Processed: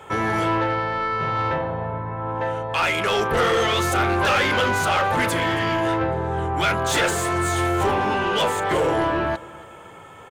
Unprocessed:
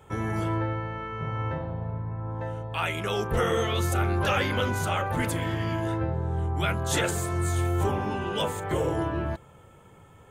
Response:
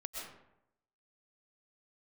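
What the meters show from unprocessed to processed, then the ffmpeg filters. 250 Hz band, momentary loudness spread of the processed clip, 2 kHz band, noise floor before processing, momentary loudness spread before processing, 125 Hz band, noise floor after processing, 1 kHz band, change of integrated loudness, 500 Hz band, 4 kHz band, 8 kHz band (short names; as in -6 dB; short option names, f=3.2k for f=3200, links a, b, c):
+5.0 dB, 7 LU, +10.0 dB, -53 dBFS, 8 LU, -0.5 dB, -42 dBFS, +10.0 dB, +6.5 dB, +7.0 dB, +8.5 dB, +5.5 dB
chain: -filter_complex "[0:a]aecho=1:1:275|550|825:0.0708|0.0269|0.0102,asplit=2[a][b];[b]highpass=f=720:p=1,volume=19dB,asoftclip=type=tanh:threshold=-14dB[c];[a][c]amix=inputs=2:normalize=0,lowpass=f=3.8k:p=1,volume=-6dB,volume=2dB"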